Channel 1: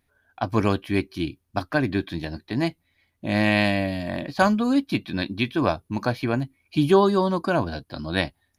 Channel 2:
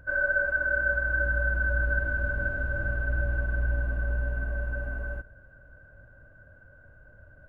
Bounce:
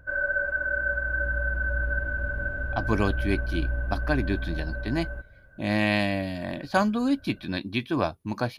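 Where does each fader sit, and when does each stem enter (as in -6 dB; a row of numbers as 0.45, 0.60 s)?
-3.5, -1.0 dB; 2.35, 0.00 s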